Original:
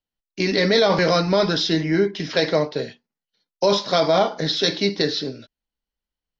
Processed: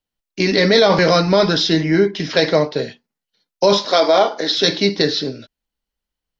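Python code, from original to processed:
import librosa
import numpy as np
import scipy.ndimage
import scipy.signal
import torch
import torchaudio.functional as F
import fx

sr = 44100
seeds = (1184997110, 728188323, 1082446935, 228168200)

y = fx.highpass(x, sr, hz=270.0, slope=24, at=(3.85, 4.58))
y = F.gain(torch.from_numpy(y), 4.5).numpy()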